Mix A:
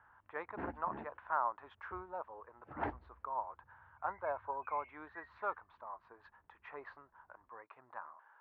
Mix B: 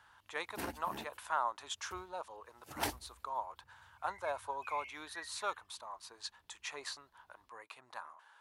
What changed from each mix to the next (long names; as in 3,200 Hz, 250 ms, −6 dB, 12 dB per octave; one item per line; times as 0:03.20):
master: remove low-pass filter 1,700 Hz 24 dB per octave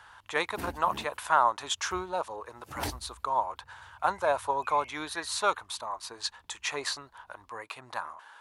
speech +10.5 dB
master: add low-shelf EQ 200 Hz +11.5 dB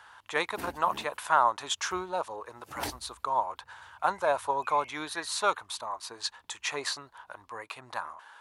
background: add low-shelf EQ 150 Hz −9.5 dB